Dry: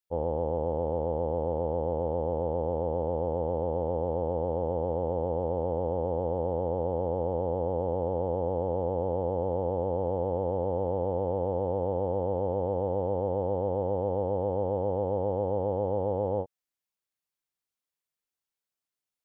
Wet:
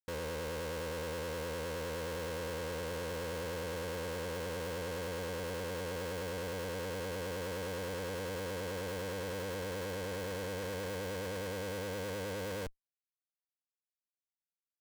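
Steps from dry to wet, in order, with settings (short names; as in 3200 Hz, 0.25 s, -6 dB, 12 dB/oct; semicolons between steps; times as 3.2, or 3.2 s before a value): steep low-pass 590 Hz 72 dB/oct; tempo 1.3×; Schmitt trigger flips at -49 dBFS; gain -8 dB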